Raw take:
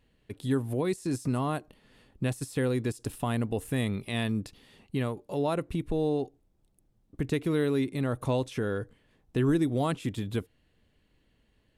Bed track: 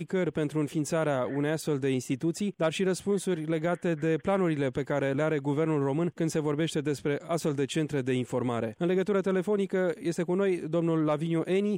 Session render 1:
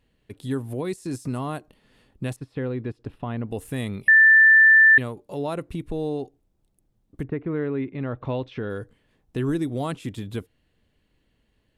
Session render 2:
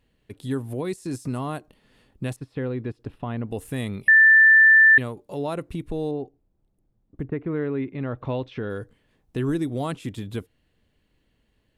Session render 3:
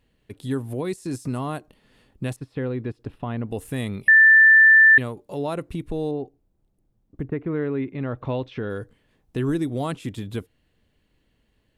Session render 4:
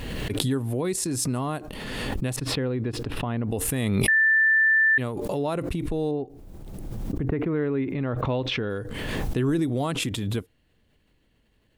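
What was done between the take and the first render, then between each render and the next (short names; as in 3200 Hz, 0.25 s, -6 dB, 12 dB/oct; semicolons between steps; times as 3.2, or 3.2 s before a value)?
2.36–3.48 air absorption 360 m; 4.08–4.98 bleep 1770 Hz -10 dBFS; 7.22–8.69 LPF 1700 Hz -> 4400 Hz 24 dB/oct
6.11–7.32 LPF 1200 Hz 6 dB/oct
gain +1 dB
limiter -16 dBFS, peak gain reduction 7 dB; backwards sustainer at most 23 dB/s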